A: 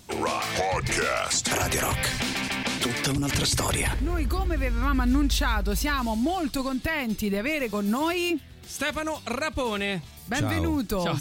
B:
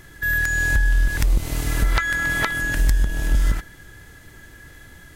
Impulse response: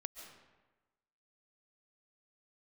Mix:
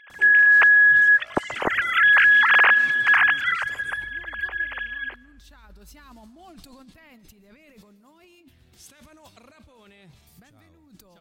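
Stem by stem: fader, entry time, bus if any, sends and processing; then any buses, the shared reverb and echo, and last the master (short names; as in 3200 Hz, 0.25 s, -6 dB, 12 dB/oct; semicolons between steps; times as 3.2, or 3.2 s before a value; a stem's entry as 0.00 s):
6.53 s -14 dB -> 7.24 s -21 dB, 0.10 s, send -5.5 dB, negative-ratio compressor -35 dBFS, ratio -1
+1.5 dB, 0.00 s, send -14 dB, sine-wave speech; AGC gain up to 15 dB; limiter -10.5 dBFS, peak gain reduction 9 dB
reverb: on, RT60 1.2 s, pre-delay 0.1 s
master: limiter -10.5 dBFS, peak gain reduction 3 dB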